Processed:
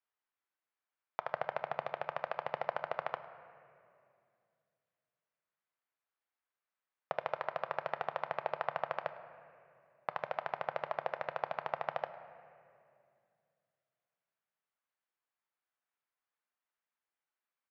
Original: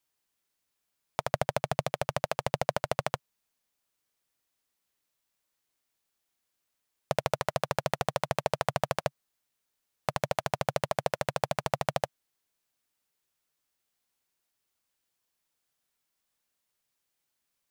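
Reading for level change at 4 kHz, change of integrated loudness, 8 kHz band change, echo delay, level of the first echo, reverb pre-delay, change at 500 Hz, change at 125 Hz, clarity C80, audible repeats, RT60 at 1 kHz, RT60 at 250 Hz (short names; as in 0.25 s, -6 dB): -14.5 dB, -7.0 dB, under -30 dB, 0.104 s, -21.0 dB, 3 ms, -7.5 dB, -21.0 dB, 12.5 dB, 1, 2.2 s, 3.1 s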